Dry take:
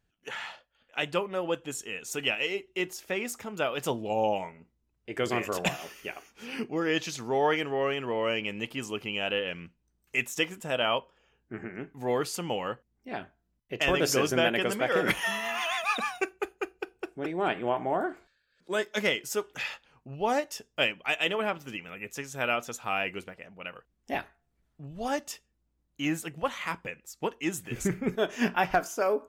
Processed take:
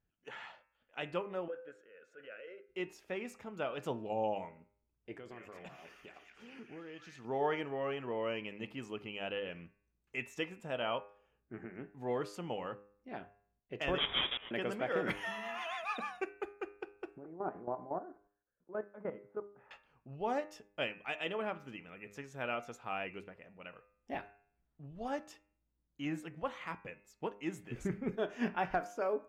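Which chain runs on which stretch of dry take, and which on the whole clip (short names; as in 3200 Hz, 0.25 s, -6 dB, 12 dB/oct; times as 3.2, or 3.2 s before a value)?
1.48–2.69 double band-pass 890 Hz, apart 1.5 oct + transient shaper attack -4 dB, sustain +7 dB
5.13–7.25 compressor 3:1, threshold -42 dBFS + delay with a stepping band-pass 0.204 s, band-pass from 1800 Hz, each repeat 0.7 oct, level -1 dB
13.98–14.51 half-waves squared off + auto swell 0.665 s + inverted band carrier 3600 Hz
17.18–19.71 LPF 1300 Hz 24 dB/oct + level quantiser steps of 14 dB
whole clip: LPF 1800 Hz 6 dB/oct; de-hum 101.8 Hz, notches 27; gain -7 dB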